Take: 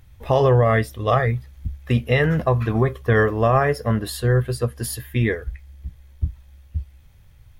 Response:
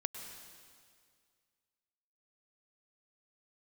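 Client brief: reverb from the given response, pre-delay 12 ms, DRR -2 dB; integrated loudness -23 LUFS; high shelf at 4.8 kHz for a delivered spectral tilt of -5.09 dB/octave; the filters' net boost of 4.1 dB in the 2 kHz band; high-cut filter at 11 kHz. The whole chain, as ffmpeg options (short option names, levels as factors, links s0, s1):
-filter_complex "[0:a]lowpass=11000,equalizer=f=2000:t=o:g=4,highshelf=f=4800:g=5,asplit=2[s0][s1];[1:a]atrim=start_sample=2205,adelay=12[s2];[s1][s2]afir=irnorm=-1:irlink=0,volume=1.26[s3];[s0][s3]amix=inputs=2:normalize=0,volume=0.501"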